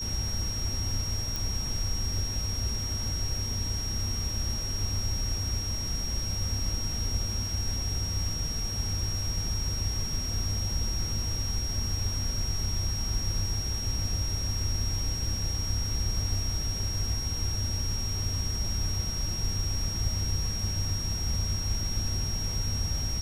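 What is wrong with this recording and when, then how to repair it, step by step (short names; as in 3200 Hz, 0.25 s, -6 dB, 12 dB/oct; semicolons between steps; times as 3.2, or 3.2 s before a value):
tone 5600 Hz -33 dBFS
1.36 pop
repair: de-click; notch 5600 Hz, Q 30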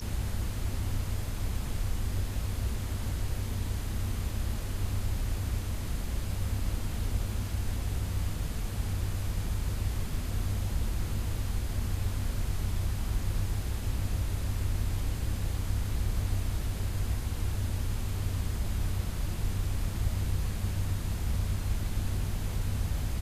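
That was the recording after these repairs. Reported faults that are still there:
none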